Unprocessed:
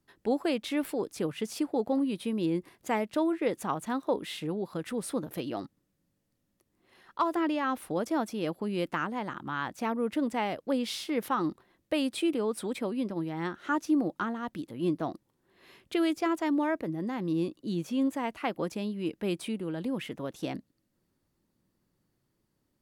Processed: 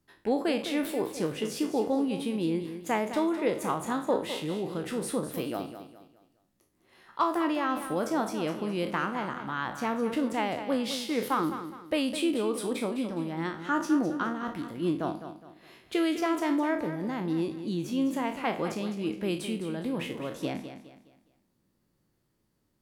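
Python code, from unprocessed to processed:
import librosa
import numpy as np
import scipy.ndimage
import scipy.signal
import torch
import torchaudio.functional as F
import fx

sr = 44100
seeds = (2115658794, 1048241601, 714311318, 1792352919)

p1 = fx.spec_trails(x, sr, decay_s=0.38)
y = p1 + fx.echo_feedback(p1, sr, ms=207, feedback_pct=35, wet_db=-10.5, dry=0)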